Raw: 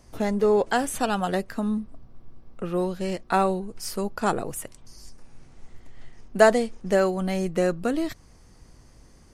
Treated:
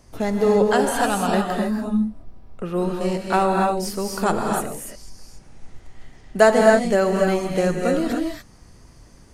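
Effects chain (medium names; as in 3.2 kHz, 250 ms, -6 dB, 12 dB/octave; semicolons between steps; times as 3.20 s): gated-style reverb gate 310 ms rising, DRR 0.5 dB; trim +2 dB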